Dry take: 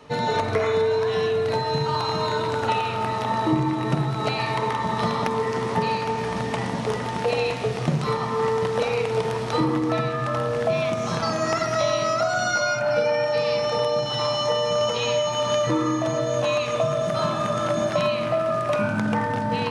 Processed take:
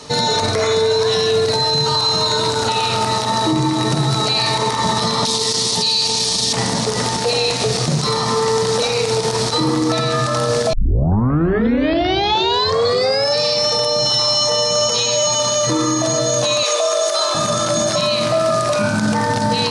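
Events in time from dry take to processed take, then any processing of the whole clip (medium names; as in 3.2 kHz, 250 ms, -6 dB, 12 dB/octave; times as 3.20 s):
5.25–6.53 s: resonant high shelf 2.5 kHz +11.5 dB, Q 1.5
10.73 s: tape start 2.67 s
16.63–17.35 s: steep high-pass 370 Hz
whole clip: high-order bell 6.3 kHz +15 dB; loudness maximiser +16.5 dB; trim -7.5 dB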